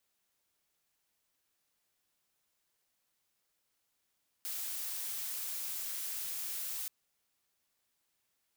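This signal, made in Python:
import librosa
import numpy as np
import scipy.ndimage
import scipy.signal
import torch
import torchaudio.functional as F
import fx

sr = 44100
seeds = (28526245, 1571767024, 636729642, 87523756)

y = fx.noise_colour(sr, seeds[0], length_s=2.43, colour='blue', level_db=-39.0)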